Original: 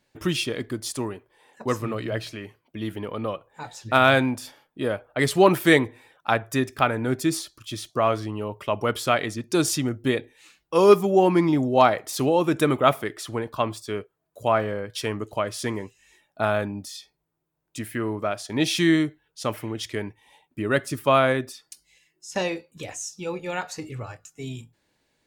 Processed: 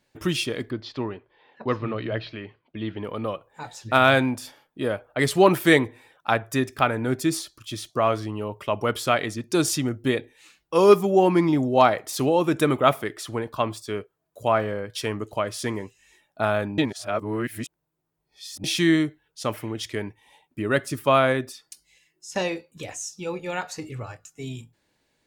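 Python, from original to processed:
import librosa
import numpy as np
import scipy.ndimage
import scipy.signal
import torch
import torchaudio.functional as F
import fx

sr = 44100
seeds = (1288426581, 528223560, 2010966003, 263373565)

y = fx.steep_lowpass(x, sr, hz=4300.0, slope=36, at=(0.69, 3.03), fade=0.02)
y = fx.edit(y, sr, fx.reverse_span(start_s=16.78, length_s=1.86), tone=tone)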